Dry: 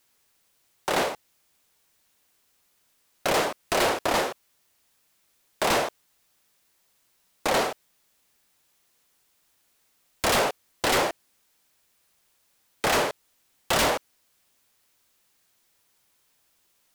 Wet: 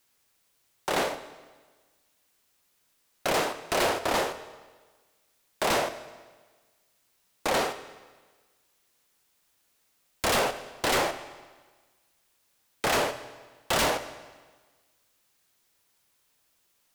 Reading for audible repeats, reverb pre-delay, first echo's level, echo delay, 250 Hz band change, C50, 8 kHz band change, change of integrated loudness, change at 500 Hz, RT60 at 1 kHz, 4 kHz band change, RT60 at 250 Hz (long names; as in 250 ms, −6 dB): no echo audible, 24 ms, no echo audible, no echo audible, −2.5 dB, 12.5 dB, −2.0 dB, −2.5 dB, −2.0 dB, 1.4 s, −2.0 dB, 1.4 s